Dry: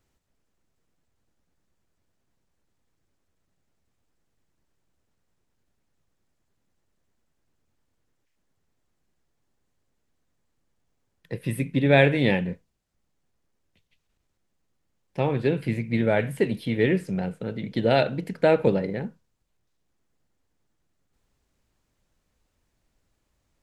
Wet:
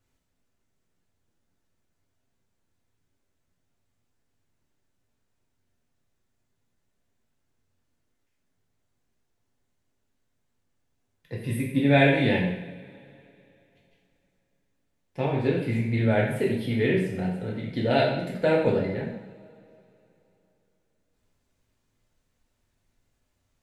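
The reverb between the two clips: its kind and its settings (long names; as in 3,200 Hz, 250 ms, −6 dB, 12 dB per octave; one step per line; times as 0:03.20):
coupled-rooms reverb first 0.72 s, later 3.2 s, from −22 dB, DRR −3 dB
level −5.5 dB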